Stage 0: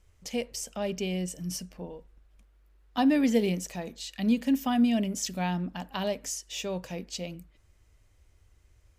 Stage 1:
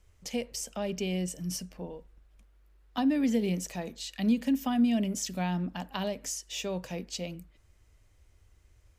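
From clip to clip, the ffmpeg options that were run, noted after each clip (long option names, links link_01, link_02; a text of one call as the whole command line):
ffmpeg -i in.wav -filter_complex "[0:a]acrossover=split=260[link_01][link_02];[link_02]acompressor=threshold=-30dB:ratio=6[link_03];[link_01][link_03]amix=inputs=2:normalize=0" out.wav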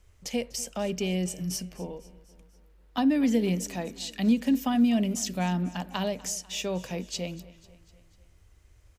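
ffmpeg -i in.wav -af "aecho=1:1:247|494|741|988:0.1|0.056|0.0314|0.0176,volume=3dB" out.wav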